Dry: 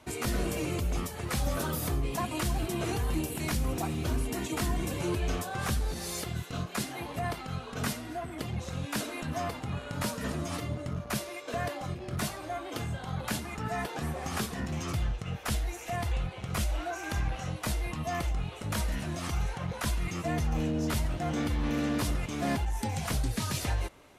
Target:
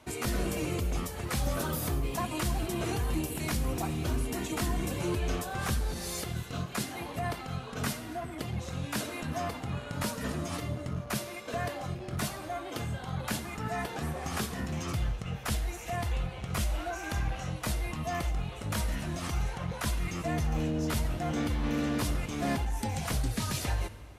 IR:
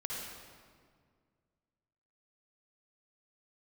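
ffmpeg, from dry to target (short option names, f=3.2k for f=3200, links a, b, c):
-filter_complex "[0:a]asplit=2[a][b];[1:a]atrim=start_sample=2205,highshelf=f=11k:g=8.5[c];[b][c]afir=irnorm=-1:irlink=0,volume=-15dB[d];[a][d]amix=inputs=2:normalize=0,volume=-1.5dB"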